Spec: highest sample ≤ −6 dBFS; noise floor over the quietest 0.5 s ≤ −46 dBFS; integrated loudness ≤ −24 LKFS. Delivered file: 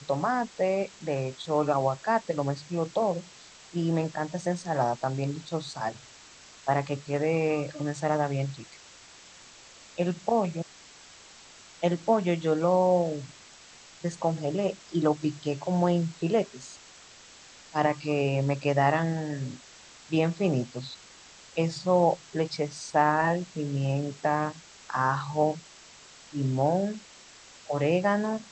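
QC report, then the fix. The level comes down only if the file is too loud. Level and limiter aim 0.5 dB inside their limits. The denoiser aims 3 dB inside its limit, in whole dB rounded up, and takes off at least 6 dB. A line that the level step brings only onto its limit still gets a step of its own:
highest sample −10.0 dBFS: in spec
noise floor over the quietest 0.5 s −51 dBFS: in spec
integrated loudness −28.0 LKFS: in spec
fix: no processing needed

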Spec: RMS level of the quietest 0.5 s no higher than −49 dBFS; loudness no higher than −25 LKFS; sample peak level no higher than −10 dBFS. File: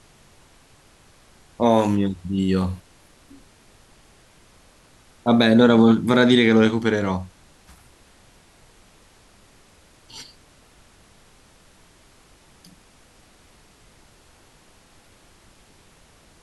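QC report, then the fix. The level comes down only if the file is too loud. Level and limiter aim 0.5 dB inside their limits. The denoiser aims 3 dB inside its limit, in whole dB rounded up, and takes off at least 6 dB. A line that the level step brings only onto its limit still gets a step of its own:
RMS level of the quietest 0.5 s −53 dBFS: in spec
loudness −18.5 LKFS: out of spec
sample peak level −4.5 dBFS: out of spec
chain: level −7 dB

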